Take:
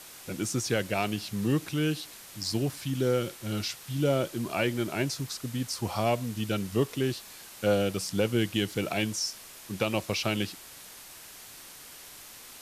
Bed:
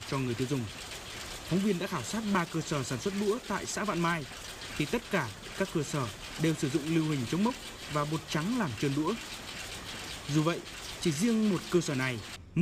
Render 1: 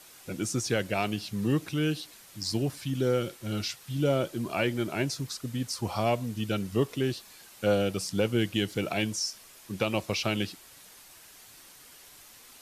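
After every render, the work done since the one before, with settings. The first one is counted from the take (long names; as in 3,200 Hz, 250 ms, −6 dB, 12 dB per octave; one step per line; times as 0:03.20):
broadband denoise 6 dB, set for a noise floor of −48 dBFS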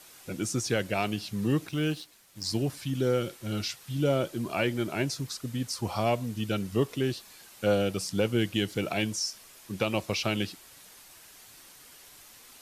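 0:01.67–0:02.44: mu-law and A-law mismatch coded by A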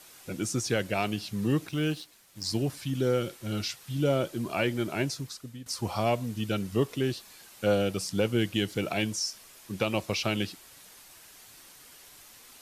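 0:05.04–0:05.66: fade out, to −15 dB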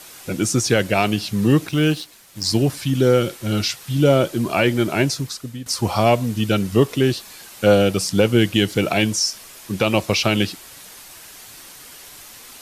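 level +11 dB
brickwall limiter −3 dBFS, peak gain reduction 3 dB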